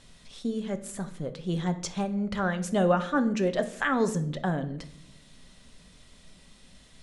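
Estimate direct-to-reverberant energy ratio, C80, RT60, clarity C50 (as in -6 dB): 8.0 dB, 17.0 dB, 0.70 s, 13.5 dB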